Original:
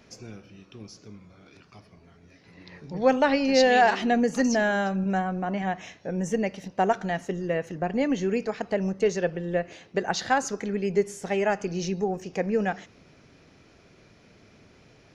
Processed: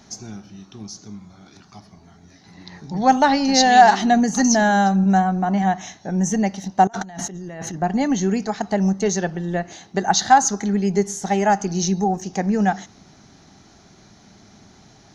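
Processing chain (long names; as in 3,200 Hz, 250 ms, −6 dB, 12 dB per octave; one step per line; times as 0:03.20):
thirty-one-band graphic EQ 200 Hz +6 dB, 500 Hz −12 dB, 800 Hz +9 dB, 2,500 Hz −9 dB, 4,000 Hz +6 dB, 6,300 Hz +11 dB
0:06.87–0:07.74: compressor whose output falls as the input rises −38 dBFS, ratio −1
level +5 dB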